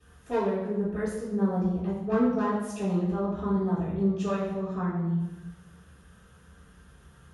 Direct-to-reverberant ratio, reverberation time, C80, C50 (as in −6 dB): −13.0 dB, 1.1 s, 4.5 dB, 1.5 dB